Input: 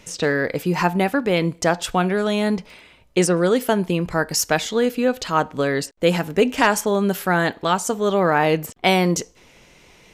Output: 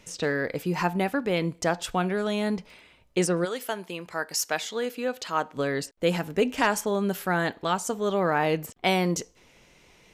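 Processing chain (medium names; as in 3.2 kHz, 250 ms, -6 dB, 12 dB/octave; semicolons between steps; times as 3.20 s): 3.44–5.55 s: high-pass 1.1 kHz -> 330 Hz 6 dB/octave; trim -6.5 dB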